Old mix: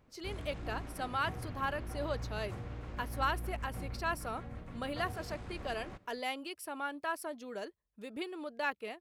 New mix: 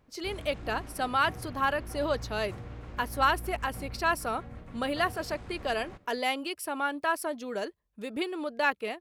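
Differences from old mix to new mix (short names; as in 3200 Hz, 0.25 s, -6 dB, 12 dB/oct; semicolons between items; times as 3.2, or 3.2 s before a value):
speech +8.0 dB; background: send +6.5 dB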